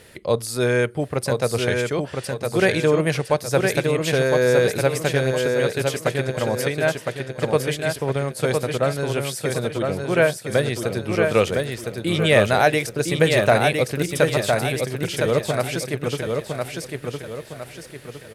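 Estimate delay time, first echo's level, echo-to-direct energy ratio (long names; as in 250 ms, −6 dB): 1,010 ms, −4.0 dB, −3.0 dB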